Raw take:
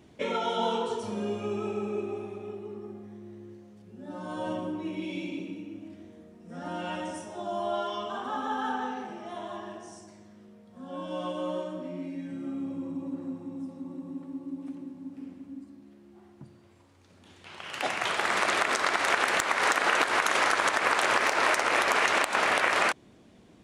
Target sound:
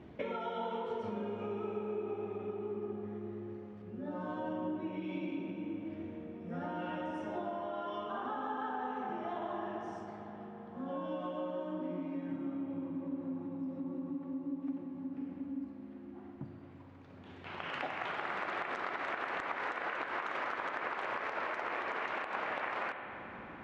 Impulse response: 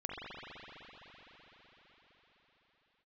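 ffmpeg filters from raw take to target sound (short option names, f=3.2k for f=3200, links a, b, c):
-filter_complex "[0:a]lowpass=2.2k,acompressor=threshold=-40dB:ratio=6,asplit=2[a][b];[1:a]atrim=start_sample=2205[c];[b][c]afir=irnorm=-1:irlink=0,volume=-6.5dB[d];[a][d]amix=inputs=2:normalize=0,volume=1dB"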